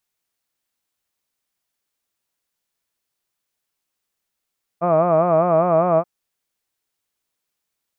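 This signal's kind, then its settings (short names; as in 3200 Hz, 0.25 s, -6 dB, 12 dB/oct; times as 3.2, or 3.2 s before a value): formant-synthesis vowel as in hud, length 1.23 s, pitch 166 Hz, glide +0.5 st, vibrato 5 Hz, vibrato depth 1.15 st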